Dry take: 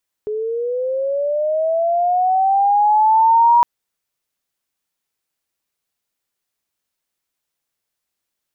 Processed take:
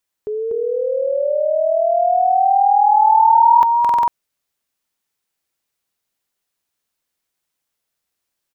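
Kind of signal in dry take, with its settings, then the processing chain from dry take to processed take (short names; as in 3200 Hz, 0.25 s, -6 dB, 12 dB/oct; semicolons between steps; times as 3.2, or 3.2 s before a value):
chirp linear 420 Hz -> 960 Hz -20 dBFS -> -8 dBFS 3.36 s
on a send: echo 0.243 s -3.5 dB; on the sum: stuck buffer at 3.8, samples 2048, times 5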